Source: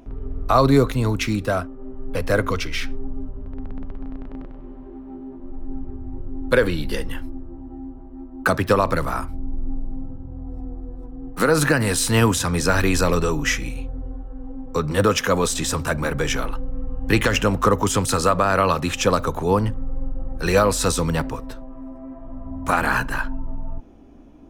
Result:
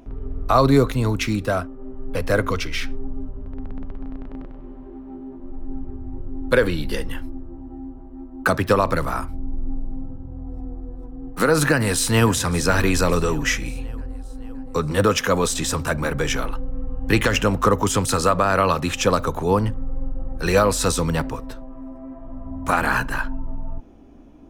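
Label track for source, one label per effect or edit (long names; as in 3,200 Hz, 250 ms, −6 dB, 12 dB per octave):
11.690000	12.300000	delay throw 570 ms, feedback 55%, level −17 dB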